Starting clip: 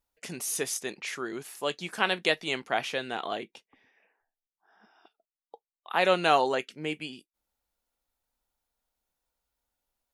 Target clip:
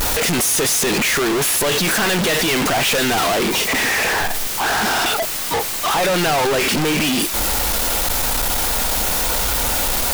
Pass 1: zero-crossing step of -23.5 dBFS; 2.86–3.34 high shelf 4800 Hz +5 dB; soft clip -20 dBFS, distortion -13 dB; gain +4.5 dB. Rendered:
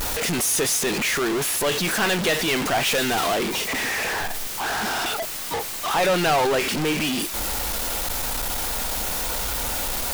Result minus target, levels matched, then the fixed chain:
zero-crossing step: distortion -5 dB
zero-crossing step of -14.5 dBFS; 2.86–3.34 high shelf 4800 Hz +5 dB; soft clip -20 dBFS, distortion -16 dB; gain +4.5 dB

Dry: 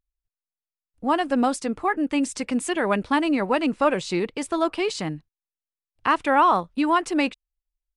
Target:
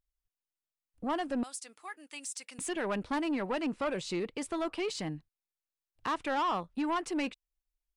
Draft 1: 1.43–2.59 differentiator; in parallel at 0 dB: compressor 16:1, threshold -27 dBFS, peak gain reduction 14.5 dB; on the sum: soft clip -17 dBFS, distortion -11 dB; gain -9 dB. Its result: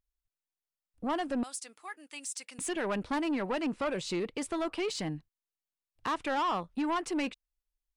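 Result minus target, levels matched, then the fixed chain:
compressor: peak gain reduction -7 dB
1.43–2.59 differentiator; in parallel at 0 dB: compressor 16:1, threshold -34.5 dBFS, peak gain reduction 21.5 dB; on the sum: soft clip -17 dBFS, distortion -12 dB; gain -9 dB

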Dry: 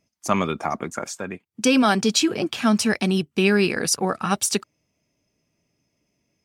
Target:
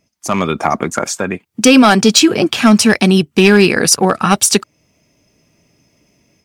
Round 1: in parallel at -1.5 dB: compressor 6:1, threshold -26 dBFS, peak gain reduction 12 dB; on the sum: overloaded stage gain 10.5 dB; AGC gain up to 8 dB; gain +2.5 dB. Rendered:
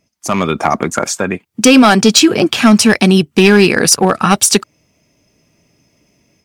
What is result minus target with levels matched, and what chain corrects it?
compressor: peak gain reduction -6.5 dB
in parallel at -1.5 dB: compressor 6:1, threshold -34 dBFS, peak gain reduction 19 dB; on the sum: overloaded stage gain 10.5 dB; AGC gain up to 8 dB; gain +2.5 dB

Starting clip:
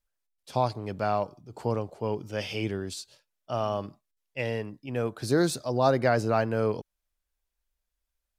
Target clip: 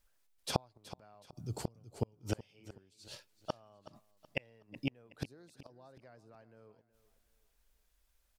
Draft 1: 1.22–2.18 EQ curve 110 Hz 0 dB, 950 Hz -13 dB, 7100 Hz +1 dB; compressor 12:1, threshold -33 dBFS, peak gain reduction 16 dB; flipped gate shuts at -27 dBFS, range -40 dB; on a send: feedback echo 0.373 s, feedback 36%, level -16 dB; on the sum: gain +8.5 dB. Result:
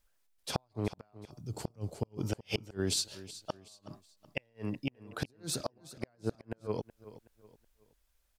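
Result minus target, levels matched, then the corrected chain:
compressor: peak gain reduction +11 dB
1.22–2.18 EQ curve 110 Hz 0 dB, 950 Hz -13 dB, 7100 Hz +1 dB; compressor 12:1, threshold -21 dBFS, peak gain reduction 5 dB; flipped gate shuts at -27 dBFS, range -40 dB; on a send: feedback echo 0.373 s, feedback 36%, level -16 dB; on the sum: gain +8.5 dB

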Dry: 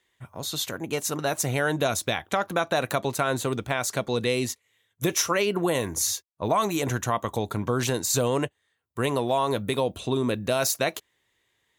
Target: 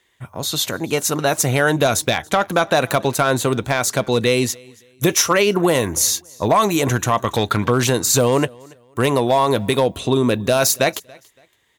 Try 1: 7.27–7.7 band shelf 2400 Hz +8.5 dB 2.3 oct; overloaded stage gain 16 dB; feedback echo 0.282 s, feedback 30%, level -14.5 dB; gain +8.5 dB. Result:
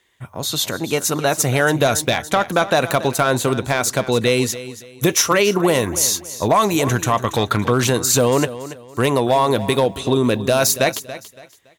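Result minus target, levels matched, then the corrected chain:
echo-to-direct +11 dB
7.27–7.7 band shelf 2400 Hz +8.5 dB 2.3 oct; overloaded stage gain 16 dB; feedback echo 0.282 s, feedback 30%, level -25.5 dB; gain +8.5 dB

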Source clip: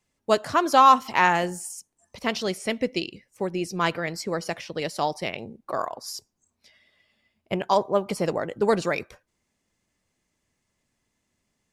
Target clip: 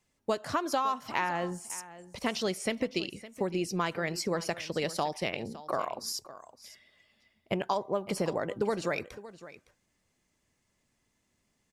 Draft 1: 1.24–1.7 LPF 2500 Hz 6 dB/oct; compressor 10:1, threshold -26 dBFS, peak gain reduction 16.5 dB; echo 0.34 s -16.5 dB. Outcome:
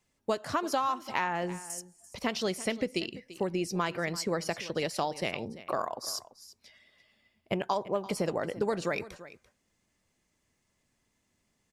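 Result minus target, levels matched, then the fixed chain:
echo 0.221 s early
1.24–1.7 LPF 2500 Hz 6 dB/oct; compressor 10:1, threshold -26 dBFS, peak gain reduction 16.5 dB; echo 0.561 s -16.5 dB

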